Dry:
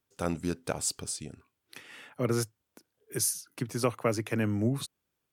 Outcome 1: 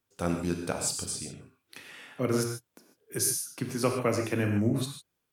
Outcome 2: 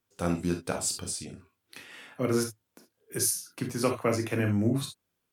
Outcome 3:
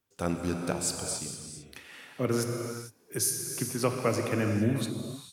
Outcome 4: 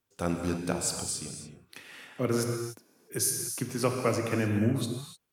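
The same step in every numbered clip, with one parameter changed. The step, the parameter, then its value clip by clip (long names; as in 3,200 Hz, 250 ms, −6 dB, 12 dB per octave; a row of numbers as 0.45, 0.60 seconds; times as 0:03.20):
reverb whose tail is shaped and stops, gate: 170, 90, 480, 320 milliseconds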